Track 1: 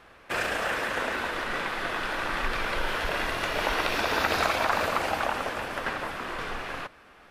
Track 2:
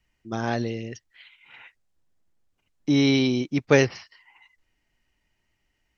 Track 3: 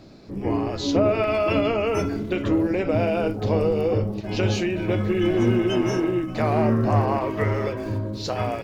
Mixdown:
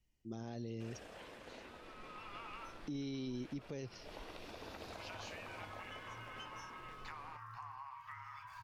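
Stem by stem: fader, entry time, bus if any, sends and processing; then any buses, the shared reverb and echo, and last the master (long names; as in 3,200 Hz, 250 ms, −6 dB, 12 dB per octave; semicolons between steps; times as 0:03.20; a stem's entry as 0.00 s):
−17.5 dB, 0.50 s, bus A, no send, high-shelf EQ 8,400 Hz −11.5 dB
−5.5 dB, 0.00 s, bus A, no send, no processing
−13.0 dB, 0.70 s, no bus, no send, elliptic band-stop filter 140–860 Hz; low shelf with overshoot 700 Hz −13.5 dB, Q 3; downward compressor 8 to 1, threshold −34 dBFS, peak gain reduction 15 dB; automatic ducking −14 dB, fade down 0.25 s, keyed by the second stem
bus A: 0.0 dB, parametric band 1,500 Hz −12.5 dB 2 octaves; downward compressor 2.5 to 1, threshold −37 dBFS, peak gain reduction 11.5 dB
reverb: not used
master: brickwall limiter −34.5 dBFS, peak gain reduction 11.5 dB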